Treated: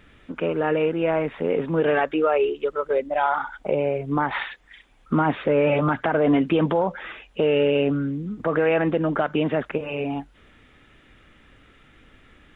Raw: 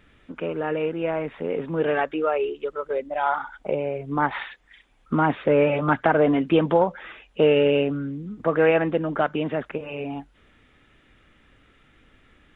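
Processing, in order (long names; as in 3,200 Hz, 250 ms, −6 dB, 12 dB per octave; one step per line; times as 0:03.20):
brickwall limiter −15.5 dBFS, peak gain reduction 9 dB
level +4 dB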